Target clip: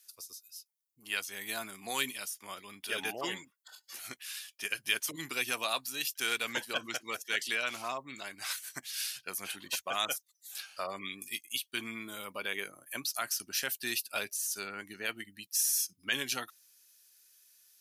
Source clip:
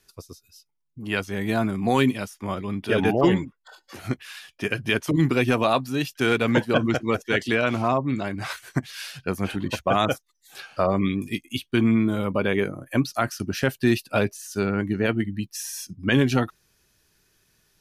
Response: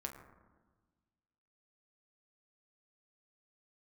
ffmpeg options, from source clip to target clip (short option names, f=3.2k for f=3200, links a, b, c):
-af "aderivative,volume=4dB"